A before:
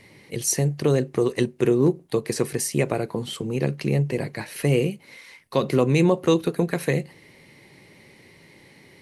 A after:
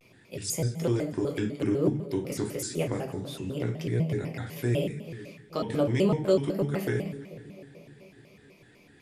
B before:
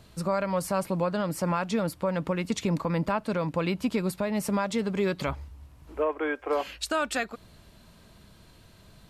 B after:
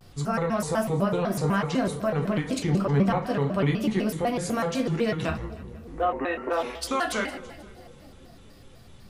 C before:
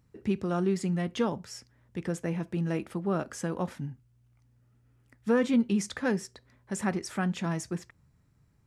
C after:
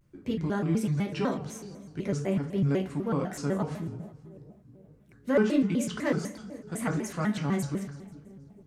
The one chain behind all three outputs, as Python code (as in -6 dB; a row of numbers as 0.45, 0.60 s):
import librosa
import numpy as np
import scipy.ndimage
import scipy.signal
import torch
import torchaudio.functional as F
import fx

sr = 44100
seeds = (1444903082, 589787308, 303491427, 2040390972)

y = fx.echo_split(x, sr, split_hz=590.0, low_ms=429, high_ms=161, feedback_pct=52, wet_db=-15.5)
y = fx.room_shoebox(y, sr, seeds[0], volume_m3=35.0, walls='mixed', distance_m=0.5)
y = fx.vibrato_shape(y, sr, shape='square', rate_hz=4.0, depth_cents=250.0)
y = y * 10.0 ** (-12 / 20.0) / np.max(np.abs(y))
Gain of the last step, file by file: -10.0, -1.0, -2.5 dB